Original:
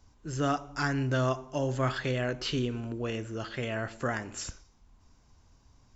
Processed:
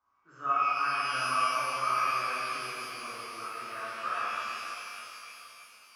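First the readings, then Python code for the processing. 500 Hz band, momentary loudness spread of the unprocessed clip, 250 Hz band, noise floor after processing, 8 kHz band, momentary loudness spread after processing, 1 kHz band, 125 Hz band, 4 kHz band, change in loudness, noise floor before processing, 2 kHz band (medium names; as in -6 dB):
-10.5 dB, 8 LU, -18.5 dB, -58 dBFS, no reading, 16 LU, +8.0 dB, -23.0 dB, +0.5 dB, +1.0 dB, -63 dBFS, +2.5 dB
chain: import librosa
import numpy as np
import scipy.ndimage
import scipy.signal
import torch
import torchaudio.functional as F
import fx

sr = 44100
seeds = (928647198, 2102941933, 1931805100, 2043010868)

y = fx.bandpass_q(x, sr, hz=1200.0, q=9.5)
y = fx.rev_shimmer(y, sr, seeds[0], rt60_s=3.5, semitones=12, shimmer_db=-8, drr_db=-11.0)
y = y * librosa.db_to_amplitude(2.5)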